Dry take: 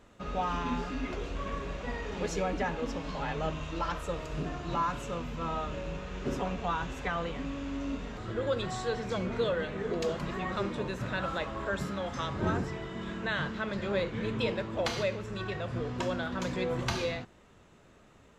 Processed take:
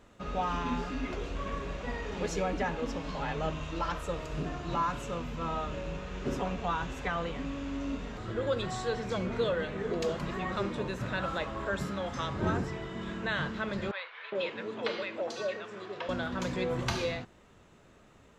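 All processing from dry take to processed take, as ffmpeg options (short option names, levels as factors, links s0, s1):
-filter_complex "[0:a]asettb=1/sr,asplit=3[s0][s1][s2];[s0]atrim=end=13.914[s3];[s1]atrim=start=13.91:end=16.09,asetpts=PTS-STARTPTS,afade=t=in:d=0.004:c=qsin,afade=t=out:st=2.176:d=0.004:c=qsin,highpass=350,lowpass=6000,acrossover=split=830|4400[s4][s5][s6];[s4]adelay=410[s7];[s6]adelay=440[s8];[s7][s5][s8]amix=inputs=3:normalize=0,atrim=end_sample=96138[s9];[s2]atrim=start=16.086[s10];[s3][s9]acrossfade=d=0.004:c1=hsin:c2=qsin[s11];[s11][s10]acrossfade=d=0.004:c1=qsin:c2=hsin"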